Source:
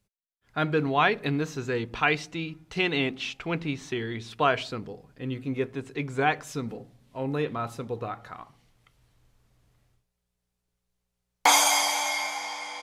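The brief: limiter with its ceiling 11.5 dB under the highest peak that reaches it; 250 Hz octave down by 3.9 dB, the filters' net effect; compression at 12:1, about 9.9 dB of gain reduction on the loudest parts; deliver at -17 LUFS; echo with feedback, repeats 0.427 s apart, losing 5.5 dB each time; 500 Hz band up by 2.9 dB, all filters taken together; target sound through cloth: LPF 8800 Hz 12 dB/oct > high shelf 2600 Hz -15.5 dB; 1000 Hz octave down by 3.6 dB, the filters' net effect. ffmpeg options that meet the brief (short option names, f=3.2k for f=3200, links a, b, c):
-af "equalizer=f=250:t=o:g=-8,equalizer=f=500:t=o:g=8,equalizer=f=1k:t=o:g=-5.5,acompressor=threshold=-26dB:ratio=12,alimiter=limit=-23.5dB:level=0:latency=1,lowpass=8.8k,highshelf=f=2.6k:g=-15.5,aecho=1:1:427|854|1281|1708|2135|2562|2989:0.531|0.281|0.149|0.079|0.0419|0.0222|0.0118,volume=19dB"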